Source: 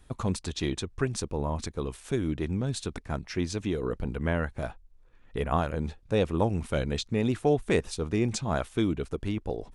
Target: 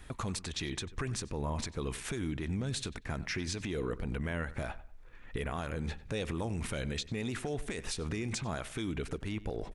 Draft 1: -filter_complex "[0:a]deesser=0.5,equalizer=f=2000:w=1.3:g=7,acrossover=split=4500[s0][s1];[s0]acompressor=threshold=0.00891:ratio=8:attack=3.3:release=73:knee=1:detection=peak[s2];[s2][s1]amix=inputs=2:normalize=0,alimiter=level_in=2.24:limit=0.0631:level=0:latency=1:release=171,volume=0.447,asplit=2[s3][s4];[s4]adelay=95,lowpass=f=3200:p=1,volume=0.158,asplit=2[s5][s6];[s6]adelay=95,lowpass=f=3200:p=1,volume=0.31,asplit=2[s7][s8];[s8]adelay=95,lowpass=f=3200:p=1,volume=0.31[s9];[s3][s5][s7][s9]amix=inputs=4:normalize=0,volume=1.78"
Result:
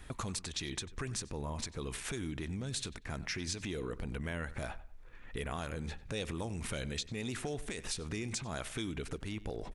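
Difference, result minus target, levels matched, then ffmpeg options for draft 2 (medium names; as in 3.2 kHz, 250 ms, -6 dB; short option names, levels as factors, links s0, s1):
compression: peak gain reduction +5.5 dB
-filter_complex "[0:a]deesser=0.5,equalizer=f=2000:w=1.3:g=7,acrossover=split=4500[s0][s1];[s0]acompressor=threshold=0.0188:ratio=8:attack=3.3:release=73:knee=1:detection=peak[s2];[s2][s1]amix=inputs=2:normalize=0,alimiter=level_in=2.24:limit=0.0631:level=0:latency=1:release=171,volume=0.447,asplit=2[s3][s4];[s4]adelay=95,lowpass=f=3200:p=1,volume=0.158,asplit=2[s5][s6];[s6]adelay=95,lowpass=f=3200:p=1,volume=0.31,asplit=2[s7][s8];[s8]adelay=95,lowpass=f=3200:p=1,volume=0.31[s9];[s3][s5][s7][s9]amix=inputs=4:normalize=0,volume=1.78"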